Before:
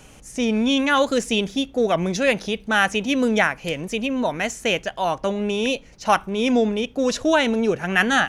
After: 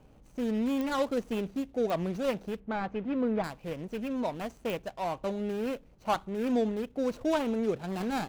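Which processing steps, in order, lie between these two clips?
median filter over 25 samples; 2.6–3.44 LPF 2200 Hz 12 dB/oct; pops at 0.81/1.9/4.7, -13 dBFS; gain -8.5 dB

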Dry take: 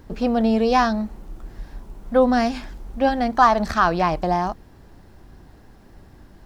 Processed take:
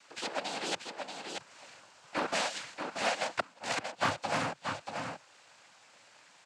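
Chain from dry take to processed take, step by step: Bessel high-pass 1100 Hz, order 4; high shelf 3400 Hz +3 dB; in parallel at 0 dB: compressor 6:1, threshold -39 dBFS, peak gain reduction 23.5 dB; on the sum: half-wave rectifier; flipped gate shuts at -13 dBFS, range -35 dB; noise vocoder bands 8; on a send: echo 0.633 s -6 dB; on the sum: Doppler distortion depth 0.4 ms

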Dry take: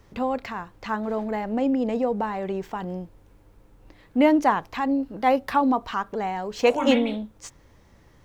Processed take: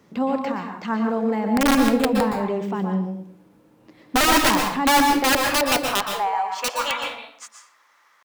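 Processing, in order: high-pass sweep 190 Hz -> 1200 Hz, 4.59–6.63; pitch shift +0.5 st; wrapped overs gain 13 dB; on a send: reverb RT60 0.55 s, pre-delay 0.113 s, DRR 3 dB

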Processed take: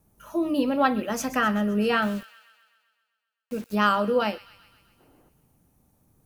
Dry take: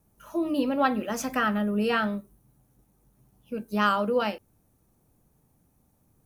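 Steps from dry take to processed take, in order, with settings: 2.02–3.75 requantised 8-bit, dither none; 5–5.29 spectral gain 240–2200 Hz +11 dB; on a send: thin delay 0.129 s, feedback 61%, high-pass 2000 Hz, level -15 dB; on the sum: gain +2 dB

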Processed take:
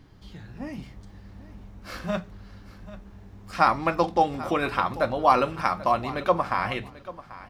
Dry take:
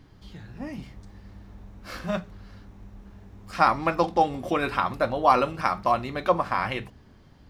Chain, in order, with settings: feedback echo 0.789 s, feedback 17%, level -17 dB

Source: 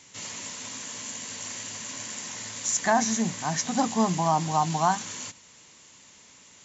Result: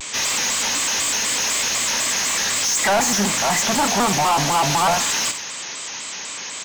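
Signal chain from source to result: overdrive pedal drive 32 dB, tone 6700 Hz, clips at -10 dBFS; feedback echo 64 ms, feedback 51%, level -12 dB; shaped vibrato square 4 Hz, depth 160 cents; gain -1.5 dB

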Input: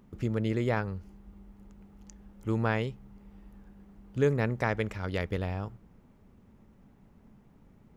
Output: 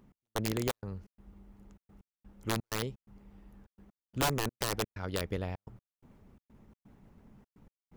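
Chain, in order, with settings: wrapped overs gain 20 dB; dynamic EQ 1900 Hz, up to -4 dB, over -41 dBFS, Q 0.84; reverse; upward compressor, threshold -49 dBFS; reverse; harmonic-percussive split percussive +4 dB; step gate "x..xxx.xx.xxxxx." 127 bpm -60 dB; gain -4.5 dB

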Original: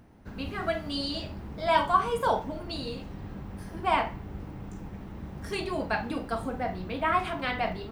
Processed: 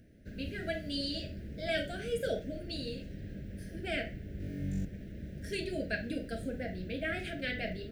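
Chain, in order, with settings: elliptic band-stop 620–1600 Hz, stop band 60 dB; 4.38–4.85 flutter echo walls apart 3.6 m, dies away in 0.97 s; gain -3 dB

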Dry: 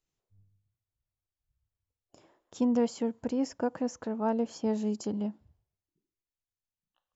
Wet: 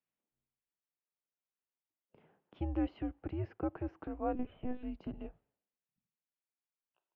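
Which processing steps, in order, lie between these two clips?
mistuned SSB -170 Hz 300–3100 Hz; 4.35–4.83 monotone LPC vocoder at 8 kHz 250 Hz; gain -4 dB

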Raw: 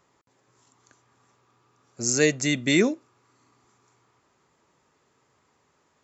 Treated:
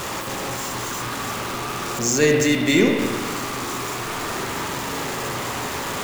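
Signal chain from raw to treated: zero-crossing step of -23.5 dBFS; spring tank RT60 1.7 s, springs 40/51 ms, chirp 45 ms, DRR 0.5 dB

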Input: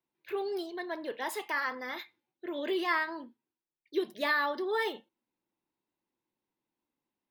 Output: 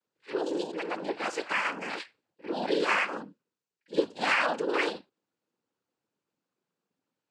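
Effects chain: pre-echo 50 ms -16 dB; noise vocoder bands 8; gain +3.5 dB

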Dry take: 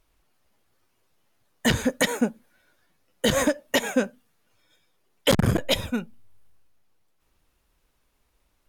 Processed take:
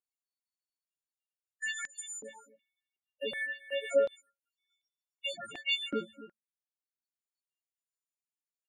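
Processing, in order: frequency quantiser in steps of 4 st; gate -50 dBFS, range -19 dB; compressor, threshold -22 dBFS, peak gain reduction 12 dB; limiter -21 dBFS, peak gain reduction 10 dB; 2.22–3.91 fixed phaser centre 2800 Hz, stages 4; loudest bins only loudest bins 8; air absorption 110 m; echo 0.265 s -16 dB; stepped high-pass 2.7 Hz 370–5500 Hz

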